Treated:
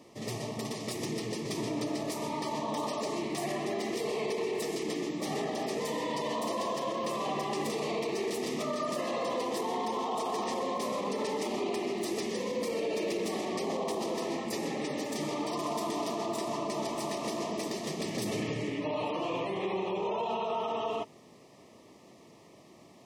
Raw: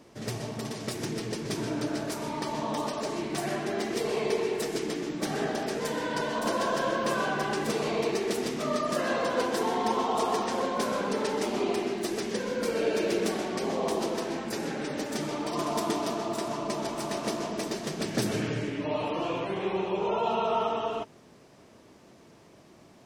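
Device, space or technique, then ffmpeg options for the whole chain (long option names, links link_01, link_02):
PA system with an anti-feedback notch: -af "highpass=frequency=130:poles=1,asuperstop=centerf=1500:order=8:qfactor=3.4,alimiter=level_in=0.5dB:limit=-24dB:level=0:latency=1:release=36,volume=-0.5dB"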